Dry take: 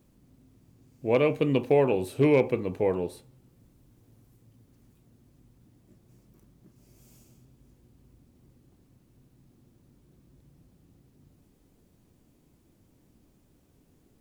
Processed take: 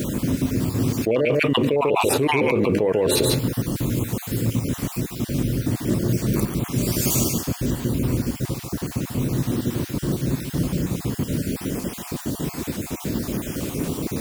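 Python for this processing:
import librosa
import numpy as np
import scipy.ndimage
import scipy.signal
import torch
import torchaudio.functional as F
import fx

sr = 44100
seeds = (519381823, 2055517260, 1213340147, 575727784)

y = fx.spec_dropout(x, sr, seeds[0], share_pct=36)
y = fx.highpass(y, sr, hz=140.0, slope=6)
y = fx.peak_eq(y, sr, hz=790.0, db=-5.5, octaves=0.25)
y = y + 10.0 ** (-8.5 / 20.0) * np.pad(y, (int(143 * sr / 1000.0), 0))[:len(y)]
y = fx.env_flatten(y, sr, amount_pct=100)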